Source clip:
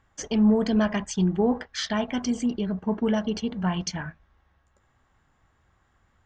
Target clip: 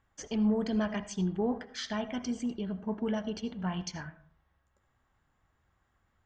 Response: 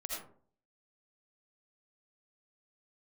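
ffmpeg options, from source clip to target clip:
-filter_complex "[0:a]asplit=2[s0][s1];[1:a]atrim=start_sample=2205,lowpass=7100[s2];[s1][s2]afir=irnorm=-1:irlink=0,volume=0.251[s3];[s0][s3]amix=inputs=2:normalize=0,volume=0.355"

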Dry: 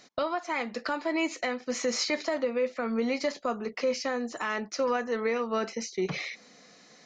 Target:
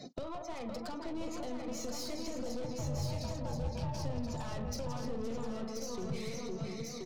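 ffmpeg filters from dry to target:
-filter_complex "[0:a]acompressor=threshold=0.01:ratio=4,equalizer=f=130:w=1.5:g=6.5,asettb=1/sr,asplit=3[s0][s1][s2];[s0]atrim=end=2.644[s3];[s1]atrim=start=2.64:end=4.03,asetpts=PTS-STARTPTS,afade=t=in:d=0.004:c=qsin,afade=t=out:st=1.386:d=0.004:c=qsin,aeval=exprs='val(0)*sin(2*PI*370*n/s)':c=same[s4];[s2]atrim=start=4.026[s5];[s3][s4]acrossfade=d=0.004:c1=hsin:c2=qsin[s6];[s6][s5]acrossfade=d=0.004:c1=qsin:c2=hsin,asplit=2[s7][s8];[s8]aecho=0:1:44|167|231|512|700:0.299|0.316|0.133|0.422|0.2[s9];[s7][s9]amix=inputs=2:normalize=0,afftdn=nr=22:nf=-55,aphaser=in_gain=1:out_gain=1:delay=1.6:decay=0.31:speed=0.75:type=sinusoidal,aeval=exprs='(tanh(112*val(0)+0.2)-tanh(0.2))/112':c=same,equalizer=f=1800:w=1:g=-13.5,asplit=2[s10][s11];[s11]aecho=0:1:1029:0.596[s12];[s10][s12]amix=inputs=2:normalize=0,acrossover=split=140[s13][s14];[s14]acompressor=threshold=0.00141:ratio=2.5[s15];[s13][s15]amix=inputs=2:normalize=0,volume=5.01"

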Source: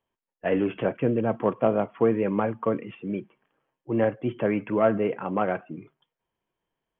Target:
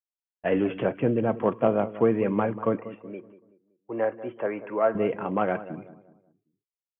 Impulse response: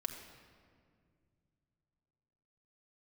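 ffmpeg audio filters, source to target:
-filter_complex "[0:a]agate=range=0.0224:threshold=0.01:ratio=3:detection=peak,asettb=1/sr,asplit=3[s0][s1][s2];[s0]atrim=end=2.764[s3];[s1]atrim=start=2.76:end=4.95,asetpts=PTS-STARTPTS,afade=t=in:d=0.004:c=qsin,afade=t=out:st=2.186:d=0.004:c=qsin,acrossover=split=390 2200:gain=0.158 1 0.126[s4][s5][s6];[s4][s5][s6]amix=inputs=3:normalize=0[s7];[s2]atrim=start=4.946[s8];[s3][s7]acrossfade=d=0.004:c1=hsin:c2=qsin[s9];[s9][s8]acrossfade=d=0.004:c1=qsin:c2=hsin,asplit=2[s10][s11];[s11]adelay=189,lowpass=f=1300:p=1,volume=0.2,asplit=2[s12][s13];[s13]adelay=189,lowpass=f=1300:p=1,volume=0.4,asplit=2[s14][s15];[s15]adelay=189,lowpass=f=1300:p=1,volume=0.4,asplit=2[s16][s17];[s17]adelay=189,lowpass=f=1300:p=1,volume=0.4[s18];[s10][s12][s14][s16][s18]amix=inputs=5:normalize=0"

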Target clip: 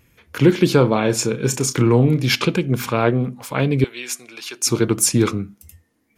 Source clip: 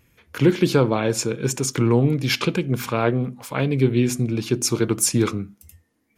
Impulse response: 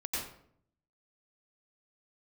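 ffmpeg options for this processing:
-filter_complex "[0:a]asettb=1/sr,asplit=3[s0][s1][s2];[s0]atrim=end=0.774[s3];[s1]atrim=start=0.77:end=2.35,asetpts=PTS-STARTPTS,afade=t=in:d=0.004:c=qsin,afade=t=out:st=1.576:d=0.004:c=qsin,asplit=2[s4][s5];[s5]adelay=32,volume=0.316[s6];[s4][s6]amix=inputs=2:normalize=0,atrim=end_sample=69678[s7];[s2]atrim=start=2.346[s8];[s3][s7]acrossfade=d=0.004:c1=hsin:c2=qsin[s9];[s9][s8]acrossfade=d=0.004:c1=qsin:c2=hsin,asettb=1/sr,asplit=3[s10][s11][s12];[s10]atrim=end=3.844[s13];[s11]atrim=start=3.84:end=4.67,asetpts=PTS-STARTPTS,afade=t=in:d=0.004:c=qsin,afade=t=out:st=0.826:d=0.004:c=qsin,highpass=1100[s14];[s12]atrim=start=4.666[s15];[s13][s14]acrossfade=d=0.004:c1=hsin:c2=qsin[s16];[s16][s15]acrossfade=d=0.004:c1=qsin:c2=hsin,volume=1.41"

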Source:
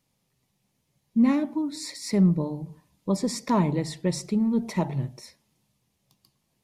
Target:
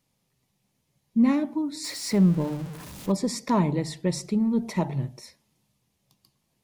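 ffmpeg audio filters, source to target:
-filter_complex "[0:a]asettb=1/sr,asplit=3[s0][s1][s2];[s0]atrim=end=1.844[s3];[s1]atrim=start=1.84:end=3.12,asetpts=PTS-STARTPTS,afade=t=in:d=0.004:c=qsin,afade=t=out:st=1.276:d=0.004:c=qsin,aeval=exprs='val(0)+0.5*0.0158*sgn(val(0))':c=same[s4];[s2]atrim=start=3.116[s5];[s3][s4]acrossfade=d=0.004:c1=hsin:c2=qsin[s6];[s6][s5]acrossfade=d=0.004:c1=qsin:c2=hsin"

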